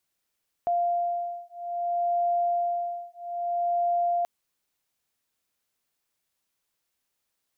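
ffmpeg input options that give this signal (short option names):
-f lavfi -i "aevalsrc='0.0422*(sin(2*PI*696*t)+sin(2*PI*696.61*t))':d=3.58:s=44100"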